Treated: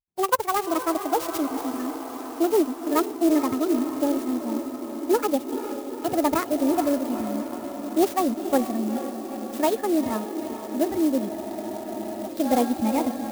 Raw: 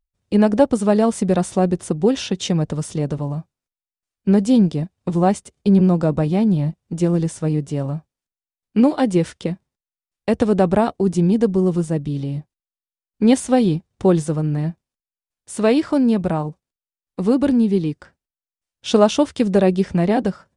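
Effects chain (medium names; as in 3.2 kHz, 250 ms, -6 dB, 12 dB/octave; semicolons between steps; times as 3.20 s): gliding tape speed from 183% -> 126%; spectral noise reduction 13 dB; echo that smears into a reverb 457 ms, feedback 73%, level -9.5 dB; spectral freeze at 11.33 s, 0.94 s; sampling jitter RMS 0.047 ms; trim -5.5 dB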